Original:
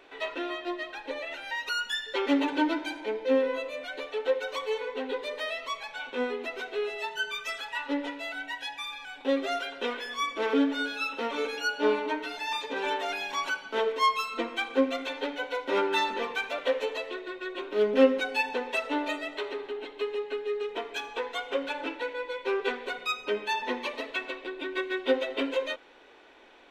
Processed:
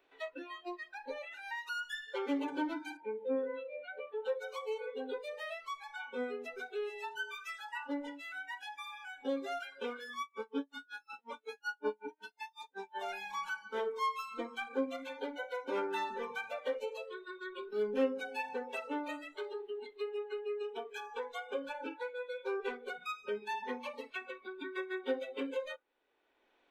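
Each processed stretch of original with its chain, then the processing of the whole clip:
0:02.97–0:04.25: high-pass filter 65 Hz + high-frequency loss of the air 300 metres
0:10.21–0:13.01: flutter between parallel walls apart 7.2 metres, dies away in 0.27 s + tremolo with a sine in dB 5.4 Hz, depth 35 dB
whole clip: noise reduction from a noise print of the clip's start 22 dB; dynamic equaliser 4,000 Hz, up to −7 dB, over −48 dBFS, Q 0.86; multiband upward and downward compressor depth 40%; level −7 dB

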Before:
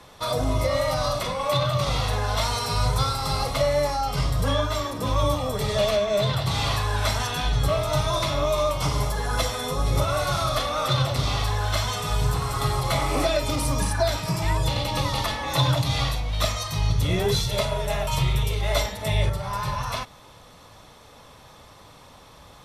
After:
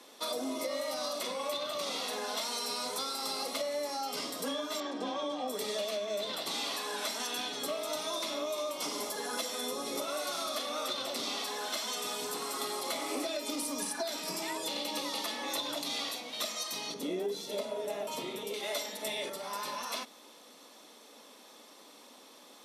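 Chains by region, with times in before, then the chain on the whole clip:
0:04.80–0:05.48: high-frequency loss of the air 120 metres + hollow resonant body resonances 760/1,600/3,200 Hz, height 16 dB, ringing for 85 ms
0:16.94–0:18.54: high-pass filter 200 Hz 6 dB per octave + tilt shelving filter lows +8 dB, about 800 Hz
whole clip: Butterworth high-pass 230 Hz 48 dB per octave; parametric band 1,100 Hz −9 dB 2.6 octaves; downward compressor, threshold −32 dBFS

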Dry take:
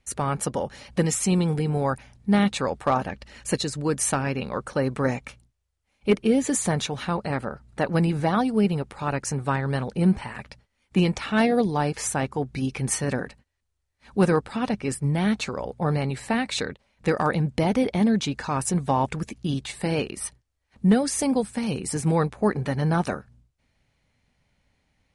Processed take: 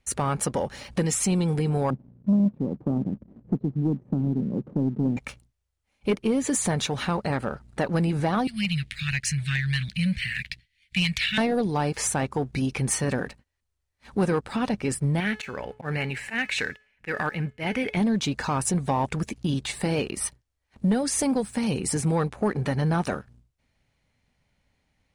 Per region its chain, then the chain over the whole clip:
0:01.90–0:05.17: flat-topped band-pass 230 Hz, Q 1.1 + spectral tilt −3 dB per octave
0:08.47–0:11.38: inverse Chebyshev band-stop filter 370–860 Hz, stop band 60 dB + flat-topped bell 2,700 Hz +10 dB + hard clipping −15 dBFS
0:15.20–0:17.97: flat-topped bell 2,100 Hz +12.5 dB 1.2 octaves + volume swells 106 ms + tuned comb filter 430 Hz, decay 0.46 s
whole clip: downward compressor 2 to 1, threshold −27 dBFS; leveller curve on the samples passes 1

